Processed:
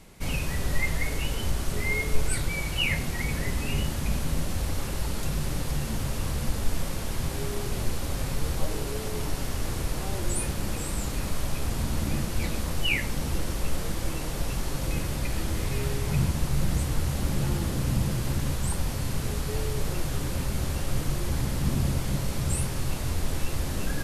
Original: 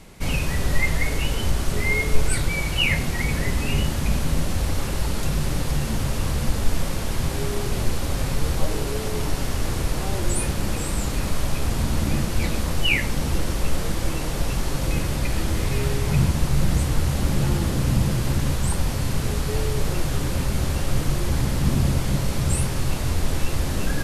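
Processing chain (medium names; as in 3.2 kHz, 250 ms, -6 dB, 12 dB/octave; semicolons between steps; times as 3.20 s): treble shelf 10 kHz +4.5 dB; trim -5.5 dB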